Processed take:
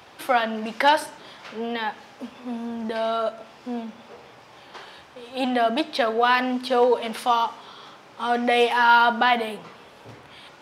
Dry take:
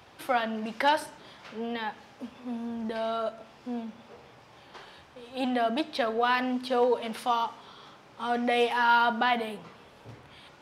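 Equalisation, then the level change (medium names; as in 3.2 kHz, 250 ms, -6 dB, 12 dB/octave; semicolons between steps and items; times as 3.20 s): bass shelf 160 Hz -9 dB; +6.5 dB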